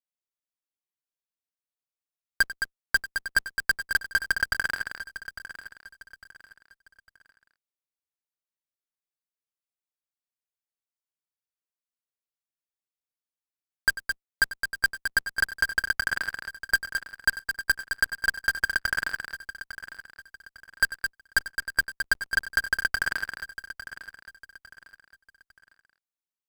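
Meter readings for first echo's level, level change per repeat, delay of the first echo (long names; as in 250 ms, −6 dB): −15.5 dB, repeats not evenly spaced, 94 ms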